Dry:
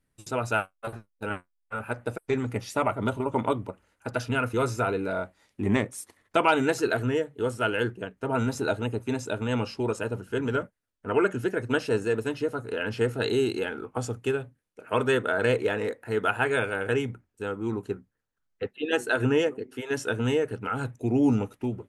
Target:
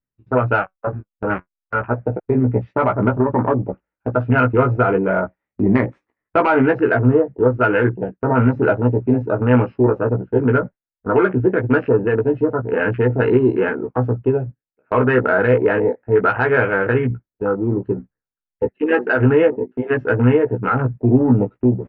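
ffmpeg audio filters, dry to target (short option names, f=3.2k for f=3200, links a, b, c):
-filter_complex "[0:a]afwtdn=0.02,lowpass=f=2.2k:w=0.5412,lowpass=f=2.2k:w=1.3066,agate=range=-12dB:threshold=-43dB:ratio=16:detection=peak,acontrast=74,alimiter=limit=-12dB:level=0:latency=1:release=52,areverse,acompressor=mode=upward:threshold=-32dB:ratio=2.5,areverse,asplit=2[a][b];[b]adelay=16,volume=-5dB[c];[a][c]amix=inputs=2:normalize=0,volume=4.5dB"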